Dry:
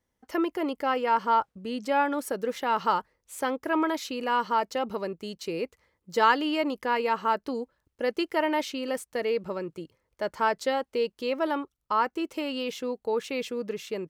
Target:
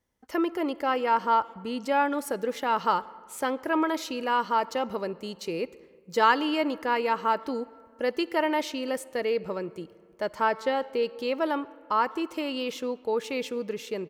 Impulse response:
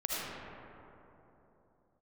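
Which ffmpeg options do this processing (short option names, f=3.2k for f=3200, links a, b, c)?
-filter_complex "[0:a]asplit=2[a][b];[b]adelay=140,highpass=300,lowpass=3.4k,asoftclip=type=hard:threshold=-18dB,volume=-27dB[c];[a][c]amix=inputs=2:normalize=0,asplit=2[d][e];[1:a]atrim=start_sample=2205,asetrate=74970,aresample=44100[f];[e][f]afir=irnorm=-1:irlink=0,volume=-21dB[g];[d][g]amix=inputs=2:normalize=0,asettb=1/sr,asplit=3[h][i][j];[h]atrim=end=10.414[k];[i]atrim=start=10.41:end=11.03,asetpts=PTS-STARTPTS,afade=t=in:d=0.004:c=qsin,afade=t=out:st=0.616:d=0.004:c=qsin,acrossover=split=3500[l][m];[m]acompressor=threshold=-47dB:ratio=4:attack=1:release=60[n];[l][n]amix=inputs=2:normalize=0[o];[j]atrim=start=11.026[p];[k][o]acrossfade=d=0.004:c1=hsin:c2=qsin[q];[q][p]acrossfade=d=0.004:c1=qsin:c2=hsin"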